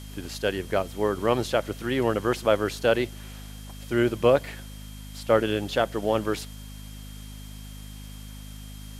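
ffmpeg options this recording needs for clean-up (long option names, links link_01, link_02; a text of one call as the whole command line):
ffmpeg -i in.wav -af "bandreject=frequency=51.5:width_type=h:width=4,bandreject=frequency=103:width_type=h:width=4,bandreject=frequency=154.5:width_type=h:width=4,bandreject=frequency=206:width_type=h:width=4,bandreject=frequency=257.5:width_type=h:width=4,bandreject=frequency=3200:width=30,afwtdn=0.0035" out.wav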